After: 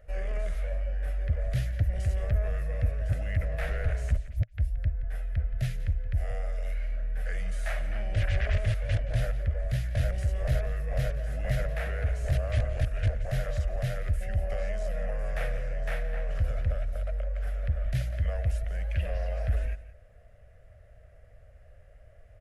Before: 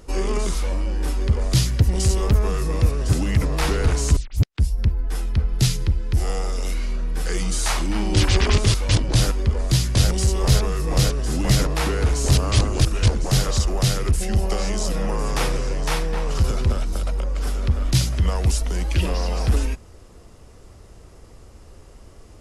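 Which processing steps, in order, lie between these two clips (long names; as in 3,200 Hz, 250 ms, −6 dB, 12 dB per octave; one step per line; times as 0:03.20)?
drawn EQ curve 110 Hz 0 dB, 340 Hz −23 dB, 620 Hz +8 dB, 950 Hz −19 dB, 1,700 Hz +4 dB, 4,800 Hz −19 dB, 8,000 Hz −18 dB, 12,000 Hz −11 dB
soft clipping −7 dBFS, distortion −25 dB
on a send: single-tap delay 173 ms −16 dB
on the sum: level −7.5 dB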